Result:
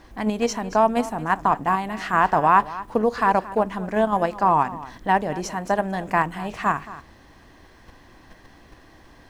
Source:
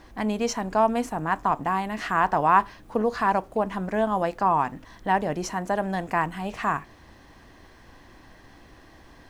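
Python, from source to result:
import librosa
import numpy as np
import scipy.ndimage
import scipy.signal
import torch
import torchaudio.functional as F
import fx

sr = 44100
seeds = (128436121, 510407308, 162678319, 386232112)

p1 = x + 10.0 ** (-15.0 / 20.0) * np.pad(x, (int(227 * sr / 1000.0), 0))[:len(x)]
p2 = fx.level_steps(p1, sr, step_db=24)
y = p1 + F.gain(torch.from_numpy(p2), -2.5).numpy()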